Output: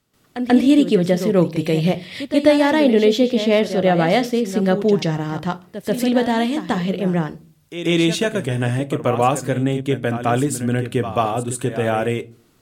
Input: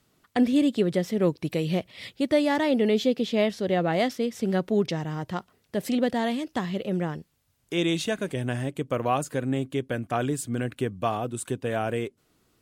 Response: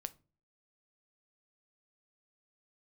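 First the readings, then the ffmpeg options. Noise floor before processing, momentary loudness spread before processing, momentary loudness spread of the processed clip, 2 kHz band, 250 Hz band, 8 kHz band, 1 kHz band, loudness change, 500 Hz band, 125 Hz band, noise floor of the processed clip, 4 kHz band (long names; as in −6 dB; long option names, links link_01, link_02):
−69 dBFS, 9 LU, 9 LU, +8.0 dB, +8.0 dB, +8.0 dB, +8.0 dB, +8.0 dB, +8.0 dB, +9.0 dB, −57 dBFS, +8.0 dB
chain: -filter_complex "[0:a]asplit=2[link_01][link_02];[1:a]atrim=start_sample=2205,adelay=136[link_03];[link_02][link_03]afir=irnorm=-1:irlink=0,volume=13.5dB[link_04];[link_01][link_04]amix=inputs=2:normalize=0,volume=-3dB"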